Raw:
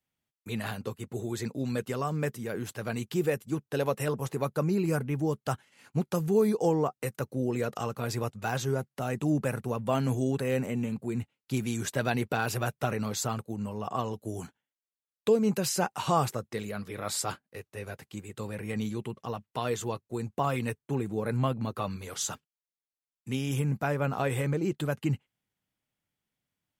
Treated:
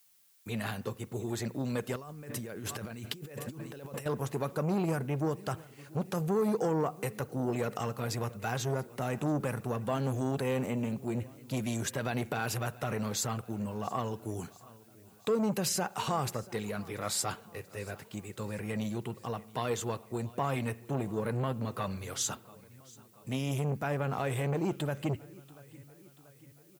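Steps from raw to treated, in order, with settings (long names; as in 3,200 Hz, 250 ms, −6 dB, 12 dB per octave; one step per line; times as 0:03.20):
brickwall limiter −19.5 dBFS, peak gain reduction 7.5 dB
repeating echo 685 ms, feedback 56%, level −23 dB
convolution reverb RT60 0.75 s, pre-delay 43 ms, DRR 20 dB
0:01.96–0:04.06: compressor whose output falls as the input rises −42 dBFS, ratio −1
background noise blue −65 dBFS
saturating transformer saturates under 520 Hz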